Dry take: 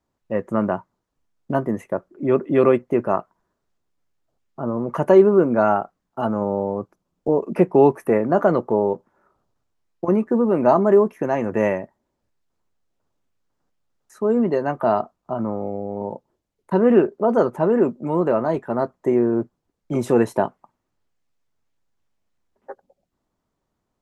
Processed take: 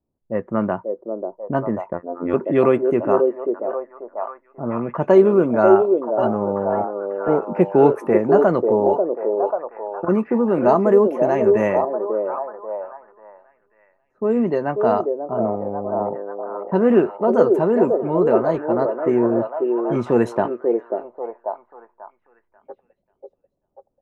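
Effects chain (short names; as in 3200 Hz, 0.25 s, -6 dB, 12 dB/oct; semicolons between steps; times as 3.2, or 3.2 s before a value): delay with a stepping band-pass 0.54 s, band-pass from 460 Hz, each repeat 0.7 oct, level -1 dB; low-pass opened by the level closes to 530 Hz, open at -12 dBFS; 1.93–2.34 robotiser 87.1 Hz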